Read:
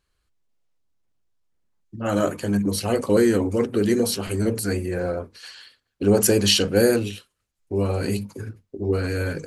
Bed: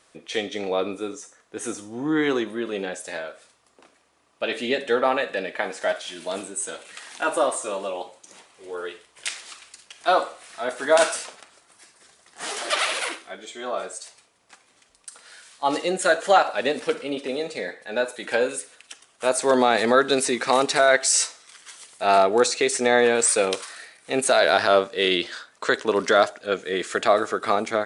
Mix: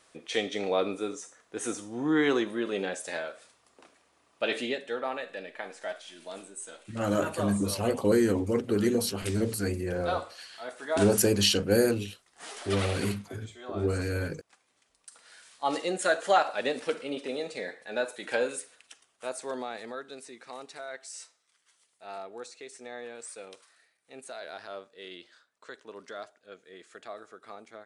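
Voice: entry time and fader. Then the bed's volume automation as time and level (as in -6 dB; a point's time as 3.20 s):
4.95 s, -5.5 dB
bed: 4.59 s -2.5 dB
4.82 s -12 dB
14.72 s -12 dB
15.46 s -6 dB
18.61 s -6 dB
20.11 s -23.5 dB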